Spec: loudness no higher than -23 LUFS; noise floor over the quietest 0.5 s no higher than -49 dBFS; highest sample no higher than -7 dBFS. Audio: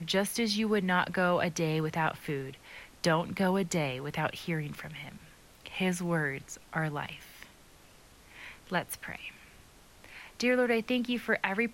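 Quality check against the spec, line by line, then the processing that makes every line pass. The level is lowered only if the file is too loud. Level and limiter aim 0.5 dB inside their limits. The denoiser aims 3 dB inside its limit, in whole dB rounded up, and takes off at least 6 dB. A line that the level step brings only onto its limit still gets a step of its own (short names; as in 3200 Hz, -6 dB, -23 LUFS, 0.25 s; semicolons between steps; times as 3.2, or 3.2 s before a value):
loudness -31.0 LUFS: OK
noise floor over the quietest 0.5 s -57 dBFS: OK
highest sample -13.5 dBFS: OK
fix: none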